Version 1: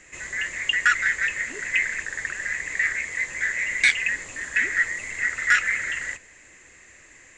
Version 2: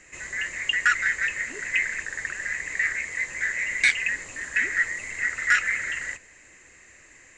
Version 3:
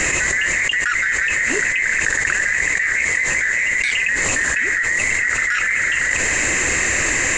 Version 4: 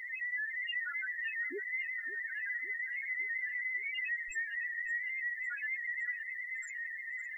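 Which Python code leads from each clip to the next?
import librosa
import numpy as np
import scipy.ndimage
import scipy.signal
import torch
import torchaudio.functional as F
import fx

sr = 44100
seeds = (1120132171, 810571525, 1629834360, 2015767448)

y1 = fx.notch(x, sr, hz=3400.0, q=15.0)
y1 = F.gain(torch.from_numpy(y1), -1.5).numpy()
y2 = fx.env_flatten(y1, sr, amount_pct=100)
y2 = F.gain(torch.from_numpy(y2), -2.5).numpy()
y3 = fx.spec_topn(y2, sr, count=1)
y3 = fx.quant_dither(y3, sr, seeds[0], bits=12, dither='triangular')
y3 = fx.echo_feedback(y3, sr, ms=560, feedback_pct=59, wet_db=-15)
y3 = F.gain(torch.from_numpy(y3), -8.0).numpy()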